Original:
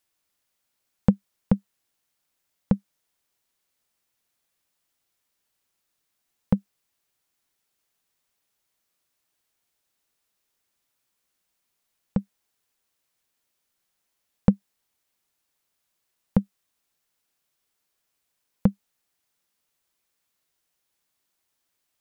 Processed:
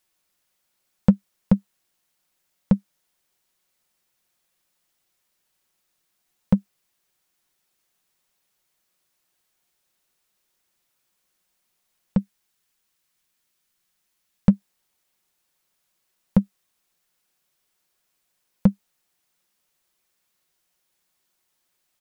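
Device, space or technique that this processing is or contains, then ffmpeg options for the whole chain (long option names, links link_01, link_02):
parallel distortion: -filter_complex "[0:a]asettb=1/sr,asplit=3[link_01][link_02][link_03];[link_01]atrim=end=12.184[link_04];[link_02]atrim=start=12.18:end=14.53,asetpts=PTS-STARTPTS,afade=type=in:duration=0.004:curve=qsin,afade=type=out:start_time=2.346:duration=0.004:curve=qsin,equalizer=frequency=580:width=0.92:gain=-5.5[link_05];[link_03]atrim=start=14.526[link_06];[link_04][link_05]acrossfade=duration=0.004:curve1=hsin:curve2=qsin[link_07];[link_07][link_06]acrossfade=duration=0.004:curve1=qsin:curve2=hsin,asplit=2[link_08][link_09];[link_09]asoftclip=type=hard:threshold=-19dB,volume=-7dB[link_10];[link_08][link_10]amix=inputs=2:normalize=0,aecho=1:1:5.5:0.33"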